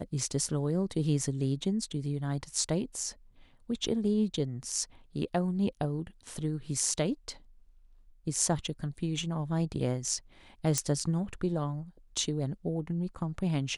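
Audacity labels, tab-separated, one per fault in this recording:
10.780000	10.780000	pop -13 dBFS

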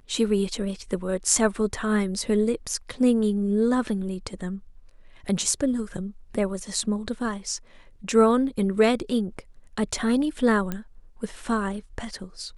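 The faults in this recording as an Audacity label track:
10.720000	10.720000	pop -15 dBFS

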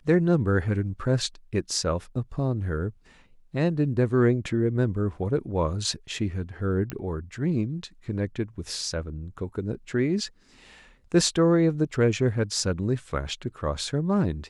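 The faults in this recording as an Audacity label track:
6.900000	6.900000	pop -17 dBFS

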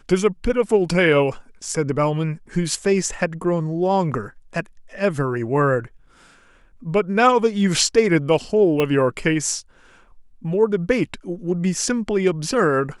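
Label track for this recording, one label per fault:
8.800000	8.800000	pop -8 dBFS

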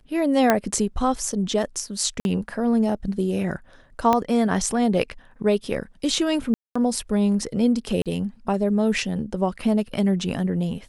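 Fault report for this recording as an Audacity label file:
0.500000	0.500000	pop -4 dBFS
2.200000	2.250000	dropout 51 ms
4.130000	4.130000	pop -7 dBFS
6.540000	6.750000	dropout 215 ms
8.020000	8.060000	dropout 37 ms

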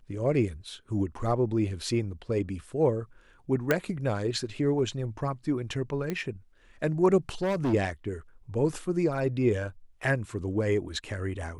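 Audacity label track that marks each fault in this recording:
3.710000	3.710000	pop -10 dBFS
6.100000	6.100000	pop -18 dBFS
7.290000	7.740000	clipped -24 dBFS

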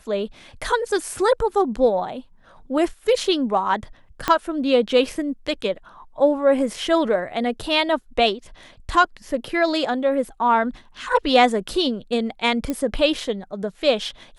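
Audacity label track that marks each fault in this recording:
4.280000	4.280000	pop -6 dBFS
12.700000	12.700000	pop -12 dBFS

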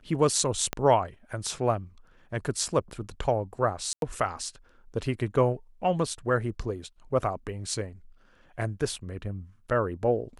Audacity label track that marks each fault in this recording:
0.730000	0.730000	pop -13 dBFS
3.930000	4.020000	dropout 92 ms

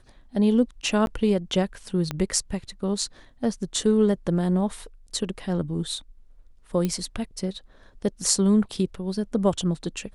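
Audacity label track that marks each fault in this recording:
1.060000	1.070000	dropout 11 ms
2.110000	2.110000	pop -14 dBFS
6.850000	6.850000	pop -13 dBFS

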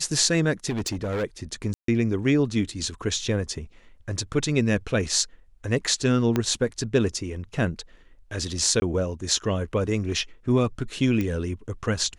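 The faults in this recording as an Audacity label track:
0.690000	1.240000	clipped -24 dBFS
1.740000	1.880000	dropout 143 ms
6.360000	6.360000	pop -10 dBFS
8.800000	8.820000	dropout 20 ms
11.210000	11.210000	pop -15 dBFS

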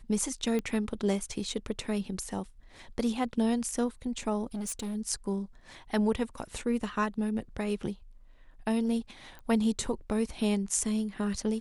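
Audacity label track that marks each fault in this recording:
0.590000	0.590000	pop -20 dBFS
4.540000	4.960000	clipped -32 dBFS
9.390000	9.390000	pop -33 dBFS

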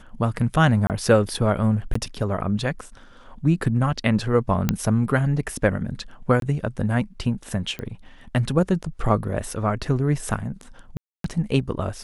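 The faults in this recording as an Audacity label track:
0.870000	0.900000	dropout 28 ms
1.940000	1.950000	dropout 14 ms
4.690000	4.690000	pop -6 dBFS
6.400000	6.420000	dropout 22 ms
7.790000	7.790000	pop -18 dBFS
10.970000	11.240000	dropout 273 ms

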